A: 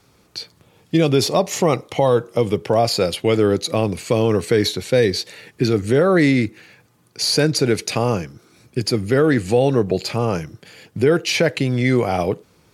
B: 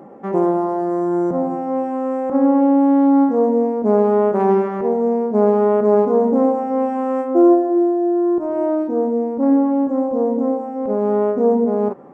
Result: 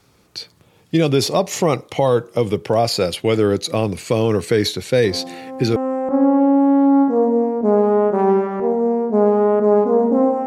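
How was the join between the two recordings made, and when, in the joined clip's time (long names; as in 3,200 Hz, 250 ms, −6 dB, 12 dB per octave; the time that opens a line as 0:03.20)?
A
0:05.04: mix in B from 0:01.25 0.72 s −11 dB
0:05.76: continue with B from 0:01.97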